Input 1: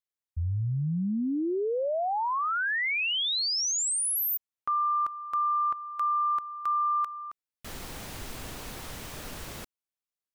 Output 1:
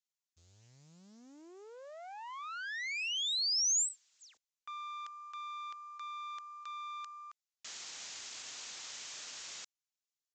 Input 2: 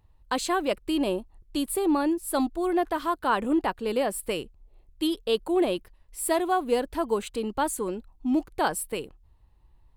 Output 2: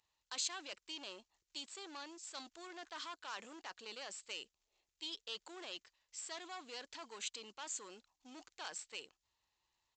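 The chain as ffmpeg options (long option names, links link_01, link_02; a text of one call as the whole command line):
ffmpeg -i in.wav -af "aeval=exprs='0.266*(cos(1*acos(clip(val(0)/0.266,-1,1)))-cos(1*PI/2))+0.0106*(cos(6*acos(clip(val(0)/0.266,-1,1)))-cos(6*PI/2))+0.0168*(cos(7*acos(clip(val(0)/0.266,-1,1)))-cos(7*PI/2))':channel_layout=same,areverse,acompressor=threshold=-36dB:ratio=6:attack=0.6:release=28:knee=6:detection=rms,areverse,acrusher=bits=9:mode=log:mix=0:aa=0.000001,aderivative,aresample=16000,aresample=44100,volume=10.5dB" out.wav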